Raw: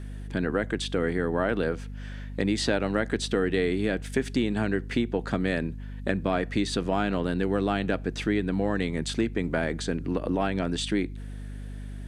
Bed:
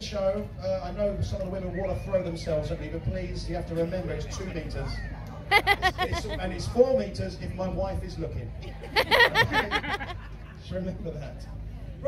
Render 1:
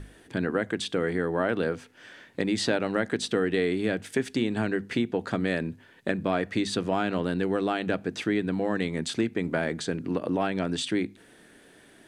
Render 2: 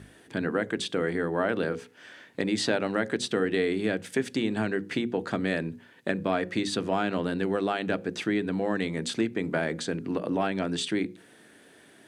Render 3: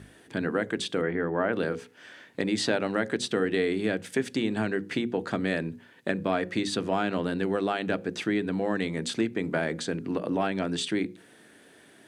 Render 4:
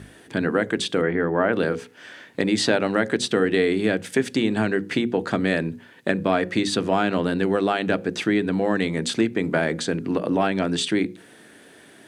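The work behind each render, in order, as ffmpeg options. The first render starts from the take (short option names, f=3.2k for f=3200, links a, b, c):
-af "bandreject=f=50:t=h:w=6,bandreject=f=100:t=h:w=6,bandreject=f=150:t=h:w=6,bandreject=f=200:t=h:w=6,bandreject=f=250:t=h:w=6"
-af "highpass=96,bandreject=f=60:t=h:w=6,bandreject=f=120:t=h:w=6,bandreject=f=180:t=h:w=6,bandreject=f=240:t=h:w=6,bandreject=f=300:t=h:w=6,bandreject=f=360:t=h:w=6,bandreject=f=420:t=h:w=6,bandreject=f=480:t=h:w=6,bandreject=f=540:t=h:w=6"
-filter_complex "[0:a]asplit=3[a][b][c];[a]afade=t=out:st=1.01:d=0.02[d];[b]lowpass=f=2.7k:w=0.5412,lowpass=f=2.7k:w=1.3066,afade=t=in:st=1.01:d=0.02,afade=t=out:st=1.52:d=0.02[e];[c]afade=t=in:st=1.52:d=0.02[f];[d][e][f]amix=inputs=3:normalize=0"
-af "volume=6dB"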